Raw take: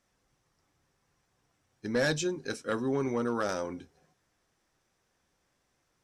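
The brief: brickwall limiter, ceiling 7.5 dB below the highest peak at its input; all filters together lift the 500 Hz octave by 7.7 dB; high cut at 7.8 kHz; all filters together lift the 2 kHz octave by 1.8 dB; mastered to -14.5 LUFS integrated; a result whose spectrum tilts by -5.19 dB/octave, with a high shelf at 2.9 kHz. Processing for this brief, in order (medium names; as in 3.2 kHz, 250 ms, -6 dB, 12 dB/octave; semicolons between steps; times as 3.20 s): low-pass 7.8 kHz; peaking EQ 500 Hz +9 dB; peaking EQ 2 kHz +3.5 dB; treble shelf 2.9 kHz -5.5 dB; trim +16 dB; peak limiter -4.5 dBFS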